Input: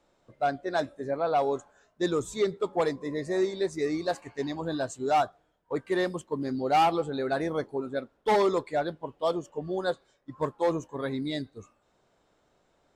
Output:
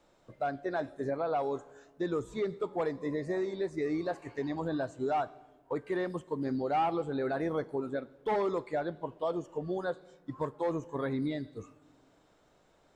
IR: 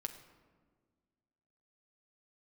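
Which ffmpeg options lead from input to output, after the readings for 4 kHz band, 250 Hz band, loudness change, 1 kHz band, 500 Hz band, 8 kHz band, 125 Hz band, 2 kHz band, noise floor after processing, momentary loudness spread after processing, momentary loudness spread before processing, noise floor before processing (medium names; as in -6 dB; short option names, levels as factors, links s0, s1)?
-11.5 dB, -2.5 dB, -4.5 dB, -6.5 dB, -4.5 dB, under -10 dB, -2.0 dB, -5.5 dB, -66 dBFS, 7 LU, 9 LU, -70 dBFS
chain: -filter_complex "[0:a]alimiter=level_in=1.33:limit=0.0631:level=0:latency=1:release=291,volume=0.75,asplit=2[s0][s1];[1:a]atrim=start_sample=2205[s2];[s1][s2]afir=irnorm=-1:irlink=0,volume=0.398[s3];[s0][s3]amix=inputs=2:normalize=0,acrossover=split=2700[s4][s5];[s5]acompressor=threshold=0.00112:ratio=4:attack=1:release=60[s6];[s4][s6]amix=inputs=2:normalize=0"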